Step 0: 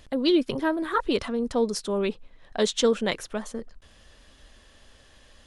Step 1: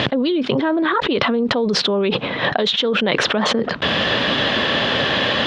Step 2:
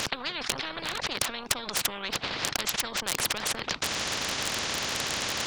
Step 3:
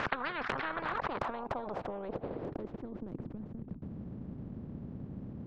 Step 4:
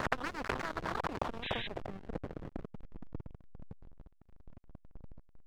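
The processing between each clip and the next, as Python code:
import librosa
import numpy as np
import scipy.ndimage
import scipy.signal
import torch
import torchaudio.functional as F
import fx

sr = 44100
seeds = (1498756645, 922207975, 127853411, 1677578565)

y1 = scipy.signal.sosfilt(scipy.signal.ellip(3, 1.0, 80, [130.0, 3600.0], 'bandpass', fs=sr, output='sos'), x)
y1 = fx.env_flatten(y1, sr, amount_pct=100)
y2 = np.clip(10.0 ** (9.5 / 20.0) * y1, -1.0, 1.0) / 10.0 ** (9.5 / 20.0)
y2 = fx.transient(y2, sr, attack_db=8, sustain_db=-8)
y2 = fx.spectral_comp(y2, sr, ratio=10.0)
y3 = fx.filter_sweep_lowpass(y2, sr, from_hz=1500.0, to_hz=200.0, start_s=0.67, end_s=3.55, q=1.7)
y3 = y3 * 10.0 ** (-1.5 / 20.0)
y4 = fx.backlash(y3, sr, play_db=-29.5)
y4 = fx.spec_paint(y4, sr, seeds[0], shape='noise', start_s=1.42, length_s=0.26, low_hz=1500.0, high_hz=3900.0, level_db=-43.0)
y4 = fx.vibrato(y4, sr, rate_hz=5.0, depth_cents=66.0)
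y4 = y4 * 10.0 ** (2.0 / 20.0)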